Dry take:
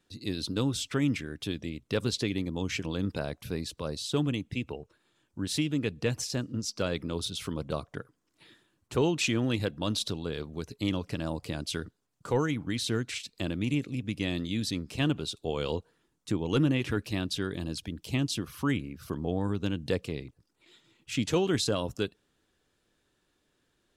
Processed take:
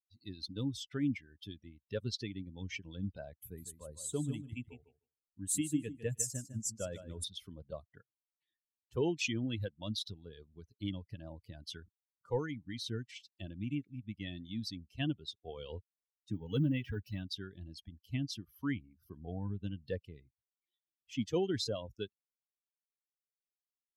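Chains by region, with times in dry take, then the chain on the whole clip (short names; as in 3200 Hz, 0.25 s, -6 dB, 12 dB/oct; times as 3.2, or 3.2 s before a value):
3.41–7.24 resonant high shelf 6300 Hz +7 dB, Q 3 + feedback echo 0.153 s, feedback 28%, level -6 dB
16.32–17.23 G.711 law mismatch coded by mu + notch comb 350 Hz
whole clip: per-bin expansion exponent 2; bell 1200 Hz -9 dB 0.64 oct; gain -2.5 dB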